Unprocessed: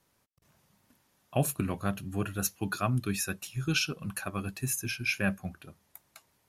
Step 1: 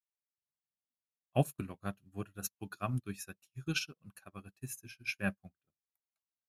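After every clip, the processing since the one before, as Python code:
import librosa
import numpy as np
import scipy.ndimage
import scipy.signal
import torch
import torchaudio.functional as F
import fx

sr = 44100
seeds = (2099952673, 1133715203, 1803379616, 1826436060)

y = fx.upward_expand(x, sr, threshold_db=-50.0, expansion=2.5)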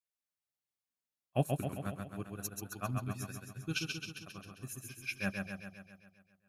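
y = fx.echo_feedback(x, sr, ms=133, feedback_pct=60, wet_db=-4)
y = y * librosa.db_to_amplitude(-2.0)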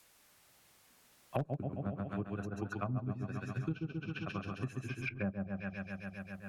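y = fx.env_lowpass_down(x, sr, base_hz=770.0, full_db=-36.0)
y = fx.clip_asym(y, sr, top_db=-28.0, bottom_db=-20.0)
y = fx.band_squash(y, sr, depth_pct=100)
y = y * librosa.db_to_amplitude(2.0)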